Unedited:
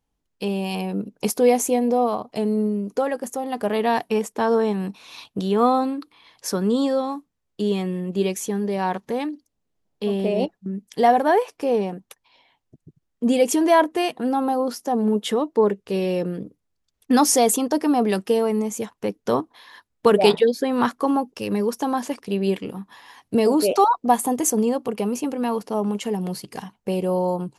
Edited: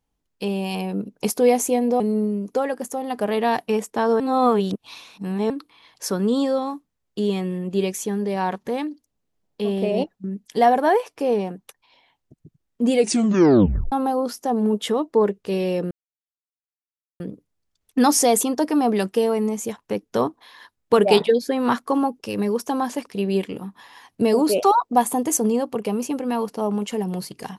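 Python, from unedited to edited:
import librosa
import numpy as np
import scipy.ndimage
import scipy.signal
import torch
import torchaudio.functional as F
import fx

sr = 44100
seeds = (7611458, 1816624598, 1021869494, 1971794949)

y = fx.edit(x, sr, fx.cut(start_s=2.0, length_s=0.42),
    fx.reverse_span(start_s=4.62, length_s=1.3),
    fx.tape_stop(start_s=13.36, length_s=0.98),
    fx.insert_silence(at_s=16.33, length_s=1.29), tone=tone)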